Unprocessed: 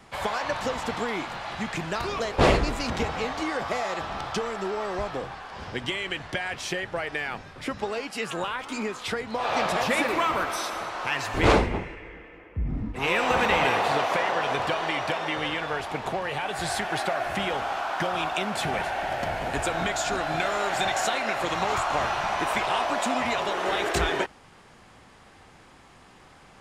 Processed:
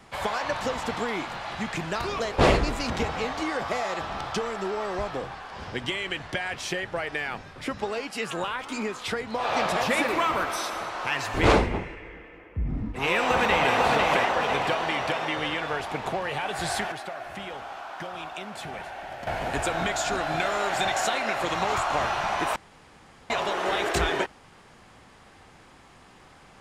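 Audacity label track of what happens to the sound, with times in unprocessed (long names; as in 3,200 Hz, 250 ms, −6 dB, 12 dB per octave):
13.180000	13.750000	delay throw 500 ms, feedback 50%, level −3.5 dB
16.920000	19.270000	clip gain −9 dB
22.560000	23.300000	fill with room tone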